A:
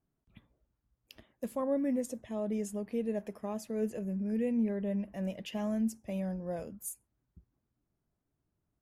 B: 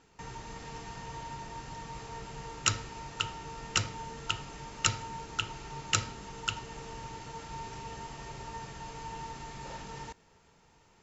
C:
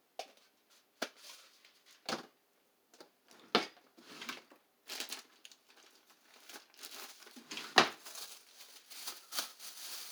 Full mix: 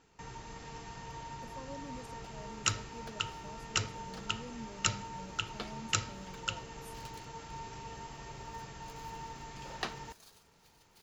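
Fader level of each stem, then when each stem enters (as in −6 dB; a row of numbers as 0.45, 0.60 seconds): −16.0, −3.0, −12.5 decibels; 0.00, 0.00, 2.05 seconds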